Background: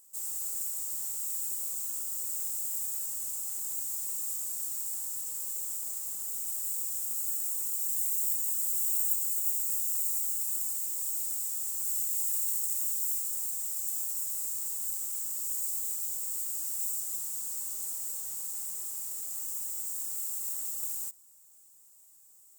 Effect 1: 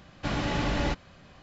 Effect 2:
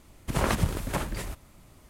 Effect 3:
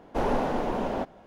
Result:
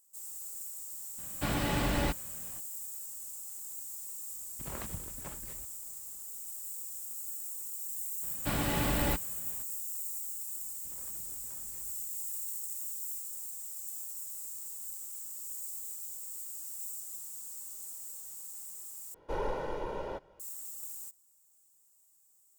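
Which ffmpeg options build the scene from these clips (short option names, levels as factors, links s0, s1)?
-filter_complex "[1:a]asplit=2[s0][s1];[2:a]asplit=2[s2][s3];[0:a]volume=0.398[s4];[s3]acompressor=threshold=0.01:ratio=10:attack=2.2:release=43:knee=1:detection=peak[s5];[3:a]aecho=1:1:2.1:0.76[s6];[s4]asplit=2[s7][s8];[s7]atrim=end=19.144[s9];[s6]atrim=end=1.26,asetpts=PTS-STARTPTS,volume=0.299[s10];[s8]atrim=start=20.396[s11];[s0]atrim=end=1.42,asetpts=PTS-STARTPTS,volume=0.75,afade=t=in:d=0.004:c=hsin,afade=t=out:st=1.416:d=0.004:c=hsin,adelay=1180[s12];[s2]atrim=end=1.89,asetpts=PTS-STARTPTS,volume=0.141,afade=t=in:d=0.004:c=hsin,afade=t=out:st=1.886:d=0.004:c=hsin,adelay=4310[s13];[s1]atrim=end=1.42,asetpts=PTS-STARTPTS,volume=0.708,afade=t=in:d=0.02,afade=t=out:st=1.4:d=0.02,adelay=8220[s14];[s5]atrim=end=1.89,asetpts=PTS-STARTPTS,volume=0.15,afade=t=in:d=0.004:c=hsin,afade=t=out:st=1.886:d=0.004:c=hsin,adelay=10570[s15];[s9][s10]acrossfade=d=0.004:c1=hsin:c2=hsin[s16];[s16][s11]acrossfade=d=0.004:c1=hsin:c2=hsin[s17];[s17][s12][s13][s14][s15]amix=inputs=5:normalize=0"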